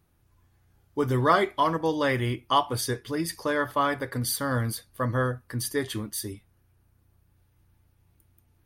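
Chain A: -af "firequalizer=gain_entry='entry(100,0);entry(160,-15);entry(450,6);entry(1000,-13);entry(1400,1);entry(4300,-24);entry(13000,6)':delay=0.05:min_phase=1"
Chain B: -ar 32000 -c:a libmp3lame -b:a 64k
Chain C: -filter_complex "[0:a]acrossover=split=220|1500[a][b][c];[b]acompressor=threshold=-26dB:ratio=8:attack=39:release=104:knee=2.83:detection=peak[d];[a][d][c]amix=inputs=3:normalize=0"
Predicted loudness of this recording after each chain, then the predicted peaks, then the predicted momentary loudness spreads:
-28.5, -27.5, -28.0 LUFS; -11.0, -8.0, -10.5 dBFS; 10, 10, 7 LU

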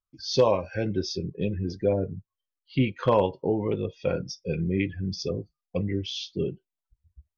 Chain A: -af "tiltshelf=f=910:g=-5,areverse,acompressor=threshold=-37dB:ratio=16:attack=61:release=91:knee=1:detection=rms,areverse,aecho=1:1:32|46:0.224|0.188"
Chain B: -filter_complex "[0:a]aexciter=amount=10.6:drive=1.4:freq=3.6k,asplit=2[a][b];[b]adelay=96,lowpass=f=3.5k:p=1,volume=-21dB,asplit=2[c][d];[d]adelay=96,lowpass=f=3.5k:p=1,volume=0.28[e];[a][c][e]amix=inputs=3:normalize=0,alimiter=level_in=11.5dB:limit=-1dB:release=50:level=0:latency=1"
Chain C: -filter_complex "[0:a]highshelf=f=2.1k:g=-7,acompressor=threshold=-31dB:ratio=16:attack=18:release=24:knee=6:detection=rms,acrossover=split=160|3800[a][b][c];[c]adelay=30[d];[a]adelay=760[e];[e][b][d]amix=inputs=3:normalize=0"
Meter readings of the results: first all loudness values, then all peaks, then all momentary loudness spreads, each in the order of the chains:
-38.0, -14.5, -36.5 LUFS; -22.0, -1.0, -20.0 dBFS; 6, 10, 6 LU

